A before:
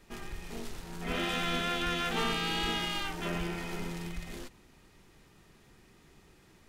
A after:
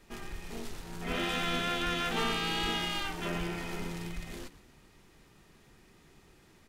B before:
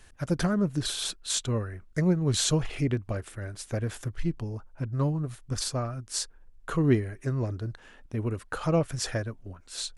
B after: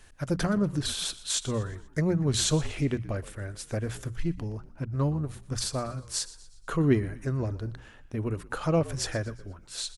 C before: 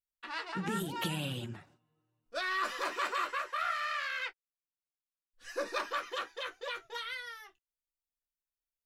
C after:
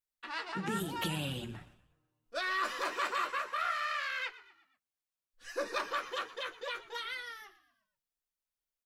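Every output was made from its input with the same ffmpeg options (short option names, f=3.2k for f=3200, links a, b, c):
-filter_complex "[0:a]bandreject=f=60:t=h:w=6,bandreject=f=120:t=h:w=6,bandreject=f=180:t=h:w=6,asplit=5[a][b][c][d][e];[b]adelay=120,afreqshift=-61,volume=-17.5dB[f];[c]adelay=240,afreqshift=-122,volume=-24.2dB[g];[d]adelay=360,afreqshift=-183,volume=-31dB[h];[e]adelay=480,afreqshift=-244,volume=-37.7dB[i];[a][f][g][h][i]amix=inputs=5:normalize=0"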